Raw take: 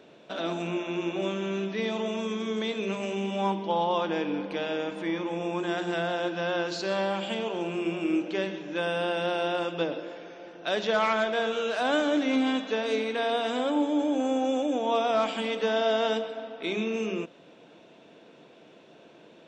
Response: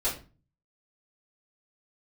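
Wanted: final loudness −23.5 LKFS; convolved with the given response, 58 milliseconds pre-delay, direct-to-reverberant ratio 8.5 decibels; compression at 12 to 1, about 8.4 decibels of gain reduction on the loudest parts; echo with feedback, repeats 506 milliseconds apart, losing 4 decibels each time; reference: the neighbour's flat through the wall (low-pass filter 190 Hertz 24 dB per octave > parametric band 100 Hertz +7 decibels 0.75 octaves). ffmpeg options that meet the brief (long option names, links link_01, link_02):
-filter_complex "[0:a]acompressor=threshold=-30dB:ratio=12,aecho=1:1:506|1012|1518|2024|2530|3036|3542|4048|4554:0.631|0.398|0.25|0.158|0.0994|0.0626|0.0394|0.0249|0.0157,asplit=2[link_01][link_02];[1:a]atrim=start_sample=2205,adelay=58[link_03];[link_02][link_03]afir=irnorm=-1:irlink=0,volume=-16.5dB[link_04];[link_01][link_04]amix=inputs=2:normalize=0,lowpass=frequency=190:width=0.5412,lowpass=frequency=190:width=1.3066,equalizer=frequency=100:width_type=o:width=0.75:gain=7,volume=20.5dB"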